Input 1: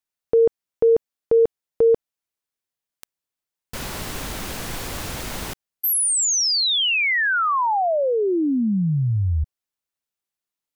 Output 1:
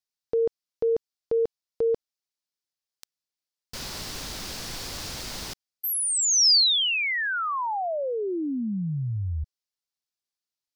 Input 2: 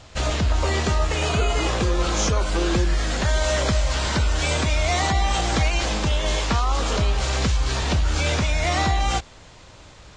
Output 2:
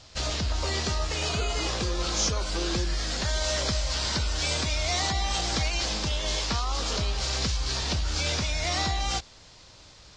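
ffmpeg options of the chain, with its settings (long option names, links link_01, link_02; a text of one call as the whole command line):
ffmpeg -i in.wav -af "equalizer=frequency=4900:width_type=o:width=1:gain=11,volume=-8dB" out.wav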